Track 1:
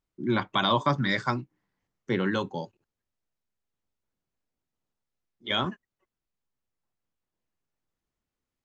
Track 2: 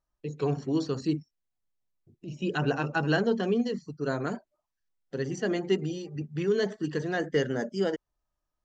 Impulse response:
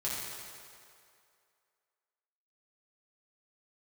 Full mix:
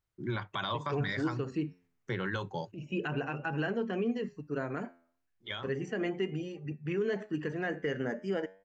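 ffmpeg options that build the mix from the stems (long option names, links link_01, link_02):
-filter_complex "[0:a]acompressor=threshold=-26dB:ratio=6,equalizer=frequency=100:width_type=o:width=0.67:gain=9,equalizer=frequency=250:width_type=o:width=0.67:gain=-9,equalizer=frequency=1600:width_type=o:width=0.67:gain=4,volume=-2dB,afade=type=out:start_time=5.25:duration=0.36:silence=0.298538[link_01];[1:a]highshelf=frequency=3100:width_type=q:width=3:gain=-7,flanger=delay=7.2:depth=4.7:regen=86:speed=0.33:shape=triangular,adelay=500,volume=1dB[link_02];[link_01][link_02]amix=inputs=2:normalize=0,alimiter=limit=-23dB:level=0:latency=1:release=117"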